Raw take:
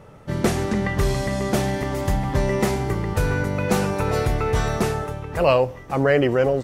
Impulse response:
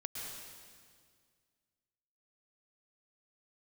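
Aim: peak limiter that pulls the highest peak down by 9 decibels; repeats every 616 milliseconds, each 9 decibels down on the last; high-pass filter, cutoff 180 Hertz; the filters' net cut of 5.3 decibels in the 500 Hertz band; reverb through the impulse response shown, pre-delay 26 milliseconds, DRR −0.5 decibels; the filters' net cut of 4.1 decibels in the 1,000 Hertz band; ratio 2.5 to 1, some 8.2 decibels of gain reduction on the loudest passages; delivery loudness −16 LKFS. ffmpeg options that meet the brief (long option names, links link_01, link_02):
-filter_complex "[0:a]highpass=180,equalizer=frequency=500:width_type=o:gain=-5.5,equalizer=frequency=1000:width_type=o:gain=-3.5,acompressor=threshold=-30dB:ratio=2.5,alimiter=limit=-23dB:level=0:latency=1,aecho=1:1:616|1232|1848|2464:0.355|0.124|0.0435|0.0152,asplit=2[link_01][link_02];[1:a]atrim=start_sample=2205,adelay=26[link_03];[link_02][link_03]afir=irnorm=-1:irlink=0,volume=0.5dB[link_04];[link_01][link_04]amix=inputs=2:normalize=0,volume=13dB"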